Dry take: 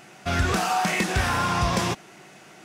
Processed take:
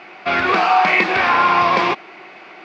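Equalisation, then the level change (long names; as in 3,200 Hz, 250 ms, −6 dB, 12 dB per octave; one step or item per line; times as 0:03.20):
high-frequency loss of the air 380 metres
loudspeaker in its box 340–7,200 Hz, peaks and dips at 350 Hz +4 dB, 780 Hz +3 dB, 1,100 Hz +6 dB, 2,300 Hz +9 dB, 4,500 Hz +5 dB
high-shelf EQ 3,500 Hz +8 dB
+8.0 dB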